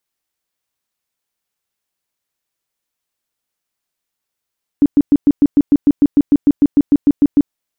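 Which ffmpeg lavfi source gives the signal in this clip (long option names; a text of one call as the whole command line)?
ffmpeg -f lavfi -i "aevalsrc='0.531*sin(2*PI*287*mod(t,0.15))*lt(mod(t,0.15),11/287)':duration=2.7:sample_rate=44100" out.wav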